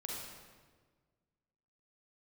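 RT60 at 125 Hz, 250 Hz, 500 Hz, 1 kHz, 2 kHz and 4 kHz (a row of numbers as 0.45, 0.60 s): 2.0, 1.8, 1.6, 1.4, 1.2, 1.1 s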